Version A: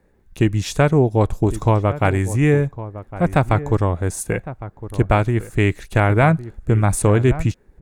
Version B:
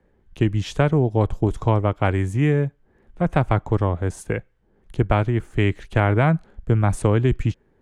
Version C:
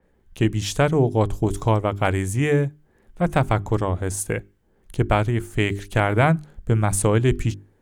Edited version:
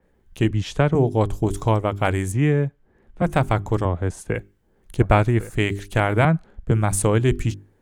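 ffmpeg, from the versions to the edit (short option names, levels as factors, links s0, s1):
-filter_complex "[1:a]asplit=4[s0][s1][s2][s3];[2:a]asplit=6[s4][s5][s6][s7][s8][s9];[s4]atrim=end=0.512[s10];[s0]atrim=start=0.508:end=0.952[s11];[s5]atrim=start=0.948:end=2.322[s12];[s1]atrim=start=2.318:end=3.222[s13];[s6]atrim=start=3.218:end=3.852[s14];[s2]atrim=start=3.848:end=4.352[s15];[s7]atrim=start=4.348:end=5.002[s16];[0:a]atrim=start=4.998:end=5.562[s17];[s8]atrim=start=5.558:end=6.252[s18];[s3]atrim=start=6.248:end=6.712[s19];[s9]atrim=start=6.708[s20];[s10][s11]acrossfade=d=0.004:c1=hsin:c2=hsin[s21];[s21][s12]acrossfade=d=0.004:c1=hsin:c2=hsin[s22];[s22][s13]acrossfade=d=0.004:c1=hsin:c2=hsin[s23];[s23][s14]acrossfade=d=0.004:c1=hsin:c2=hsin[s24];[s24][s15]acrossfade=d=0.004:c1=hsin:c2=hsin[s25];[s25][s16]acrossfade=d=0.004:c1=hsin:c2=hsin[s26];[s26][s17]acrossfade=d=0.004:c1=hsin:c2=hsin[s27];[s27][s18]acrossfade=d=0.004:c1=hsin:c2=hsin[s28];[s28][s19]acrossfade=d=0.004:c1=hsin:c2=hsin[s29];[s29][s20]acrossfade=d=0.004:c1=hsin:c2=hsin"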